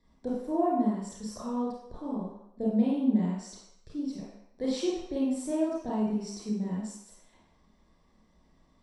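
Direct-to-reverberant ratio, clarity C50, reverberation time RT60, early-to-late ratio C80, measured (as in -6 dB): -6.5 dB, 0.0 dB, 0.75 s, 3.5 dB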